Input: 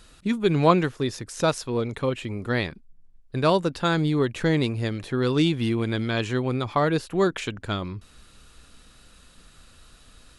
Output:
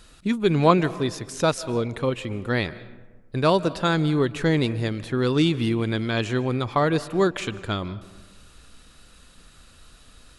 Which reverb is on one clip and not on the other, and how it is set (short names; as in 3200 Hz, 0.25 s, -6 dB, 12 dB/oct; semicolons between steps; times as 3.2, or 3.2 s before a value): digital reverb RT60 1.3 s, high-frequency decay 0.45×, pre-delay 0.11 s, DRR 17 dB; gain +1 dB